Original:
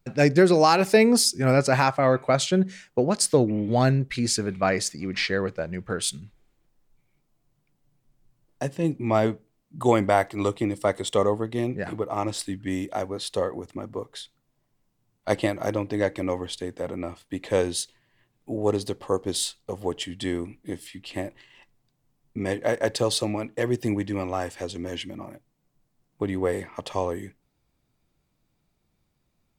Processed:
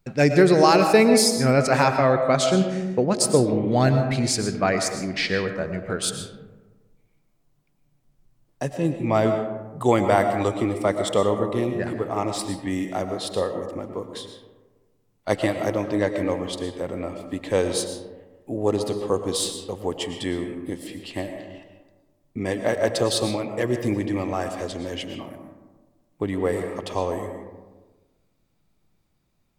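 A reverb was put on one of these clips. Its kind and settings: algorithmic reverb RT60 1.3 s, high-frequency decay 0.35×, pre-delay 75 ms, DRR 6.5 dB; trim +1 dB

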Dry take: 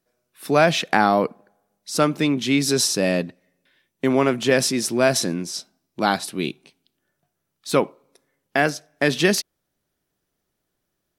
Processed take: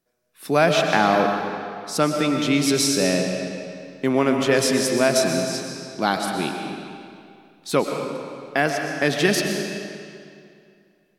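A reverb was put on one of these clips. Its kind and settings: algorithmic reverb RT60 2.4 s, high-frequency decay 0.85×, pre-delay 80 ms, DRR 3 dB; trim -1.5 dB

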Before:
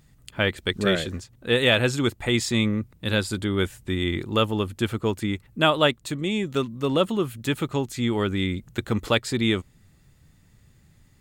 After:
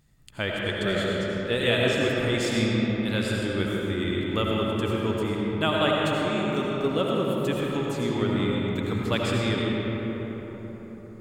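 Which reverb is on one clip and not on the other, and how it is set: algorithmic reverb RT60 4.8 s, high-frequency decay 0.4×, pre-delay 45 ms, DRR -3.5 dB; trim -6.5 dB

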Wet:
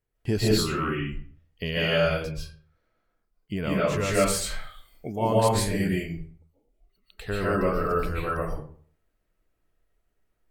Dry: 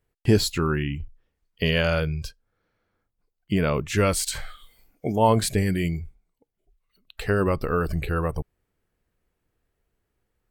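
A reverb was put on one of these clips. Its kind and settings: algorithmic reverb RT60 0.5 s, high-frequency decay 0.65×, pre-delay 105 ms, DRR -7 dB; trim -8 dB

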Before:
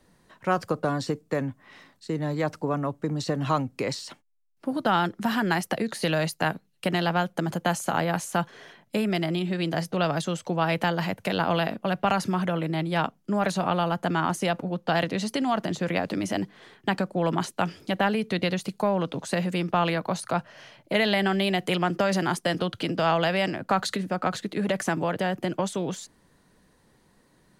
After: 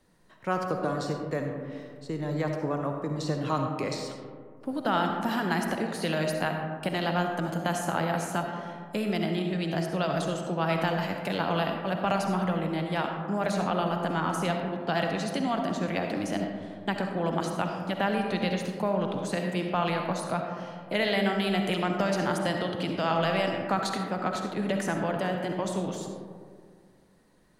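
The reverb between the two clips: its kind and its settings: algorithmic reverb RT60 2 s, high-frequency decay 0.3×, pre-delay 25 ms, DRR 3 dB; trim -4.5 dB

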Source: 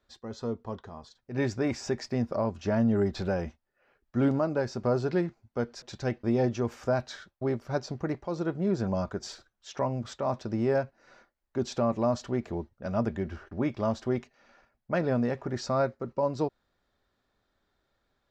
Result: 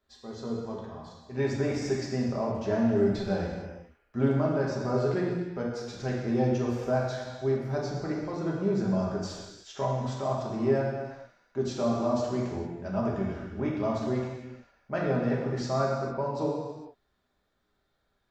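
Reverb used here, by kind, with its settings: gated-style reverb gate 480 ms falling, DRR -3.5 dB; trim -5 dB

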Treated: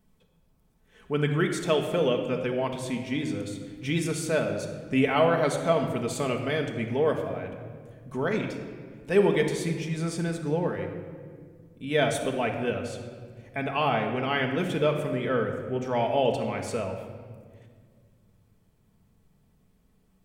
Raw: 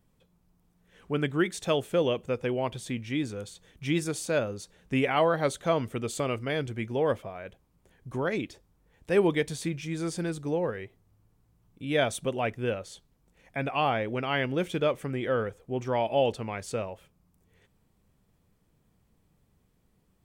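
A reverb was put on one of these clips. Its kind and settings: simulated room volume 2700 m³, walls mixed, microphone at 1.5 m

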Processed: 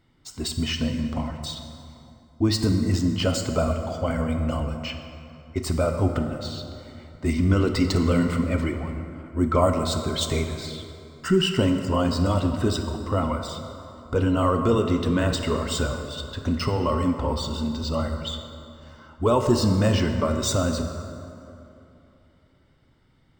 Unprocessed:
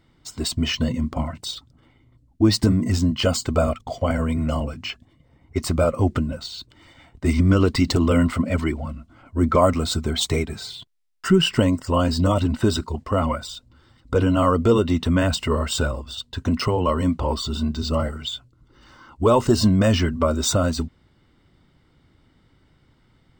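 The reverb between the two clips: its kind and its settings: plate-style reverb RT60 2.9 s, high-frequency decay 0.55×, DRR 5 dB; trim -4 dB

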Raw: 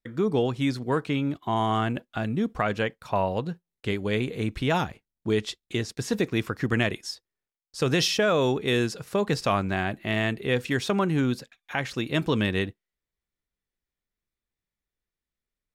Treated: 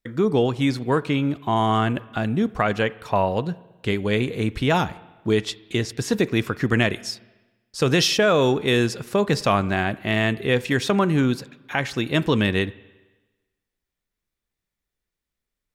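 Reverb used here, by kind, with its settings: spring tank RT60 1.2 s, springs 34/45/50 ms, chirp 40 ms, DRR 18.5 dB; trim +4.5 dB

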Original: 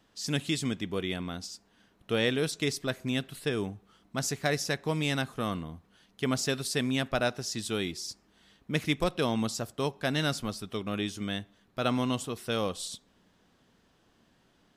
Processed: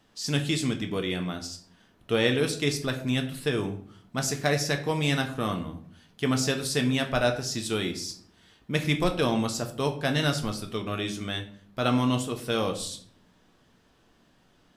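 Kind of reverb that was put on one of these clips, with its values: simulated room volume 58 m³, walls mixed, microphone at 0.4 m; trim +2 dB

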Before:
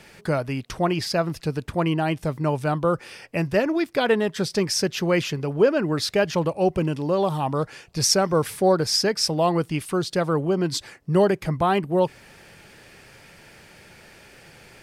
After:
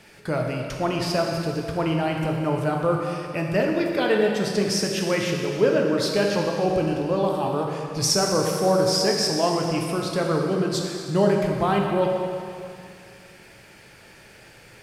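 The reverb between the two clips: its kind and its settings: plate-style reverb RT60 2.4 s, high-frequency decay 0.95×, DRR 0 dB; trim -3 dB

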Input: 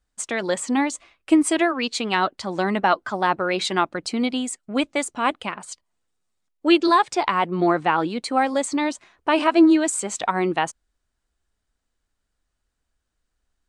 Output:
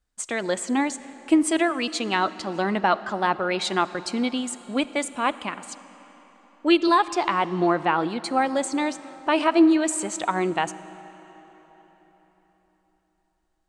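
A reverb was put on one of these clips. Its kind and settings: algorithmic reverb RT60 4.3 s, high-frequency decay 0.8×, pre-delay 5 ms, DRR 15 dB; trim -2 dB

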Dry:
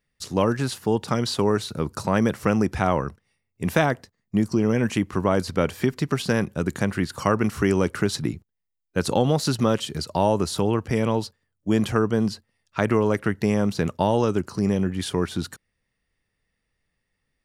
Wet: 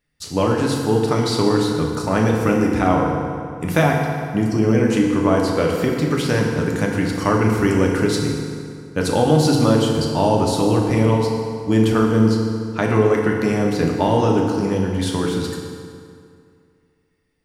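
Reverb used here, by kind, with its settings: FDN reverb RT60 2.3 s, low-frequency decay 1×, high-frequency decay 0.7×, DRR -1 dB; trim +1 dB

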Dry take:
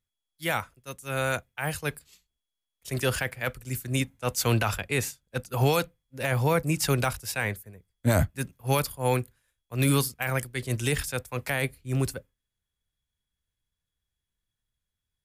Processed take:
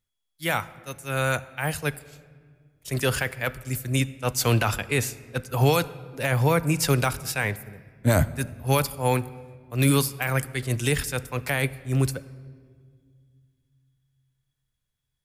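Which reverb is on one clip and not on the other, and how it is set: simulated room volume 3100 m³, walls mixed, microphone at 0.37 m; trim +2.5 dB

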